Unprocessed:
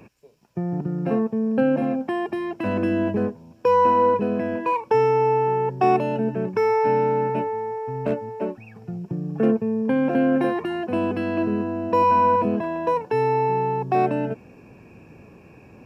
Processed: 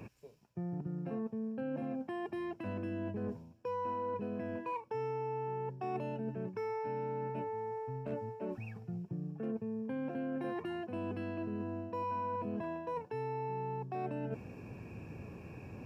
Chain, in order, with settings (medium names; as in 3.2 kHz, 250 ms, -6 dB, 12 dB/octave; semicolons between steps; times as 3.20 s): peaking EQ 97 Hz +7 dB 1.3 oct; reverse; compression 4:1, threshold -36 dBFS, peak gain reduction 18.5 dB; reverse; trim -3 dB